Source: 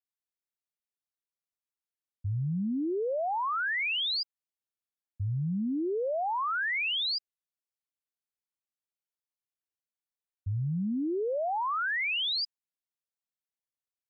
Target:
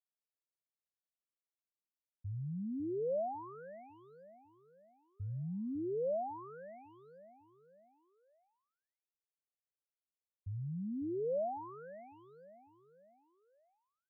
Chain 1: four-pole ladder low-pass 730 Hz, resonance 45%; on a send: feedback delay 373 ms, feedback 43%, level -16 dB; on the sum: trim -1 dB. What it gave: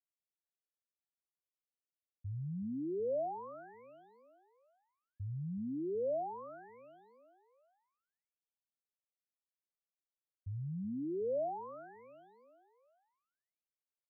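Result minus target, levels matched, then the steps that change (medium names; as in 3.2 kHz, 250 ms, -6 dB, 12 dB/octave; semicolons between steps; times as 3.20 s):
echo 178 ms early
change: feedback delay 551 ms, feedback 43%, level -16 dB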